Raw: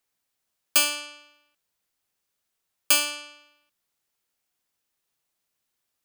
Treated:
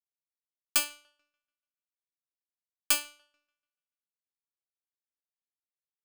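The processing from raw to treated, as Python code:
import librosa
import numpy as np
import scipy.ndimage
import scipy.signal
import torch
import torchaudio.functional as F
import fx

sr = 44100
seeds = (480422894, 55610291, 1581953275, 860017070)

y = fx.echo_wet_bandpass(x, sr, ms=145, feedback_pct=69, hz=1200.0, wet_db=-12)
y = fx.power_curve(y, sr, exponent=2.0)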